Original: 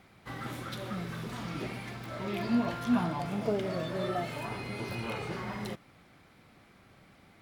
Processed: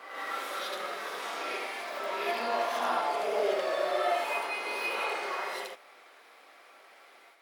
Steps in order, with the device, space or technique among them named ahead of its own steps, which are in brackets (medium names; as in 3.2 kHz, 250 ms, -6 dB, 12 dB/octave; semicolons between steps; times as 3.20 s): ghost voice (reverse; reverberation RT60 1.0 s, pre-delay 63 ms, DRR -6 dB; reverse; high-pass 480 Hz 24 dB/octave)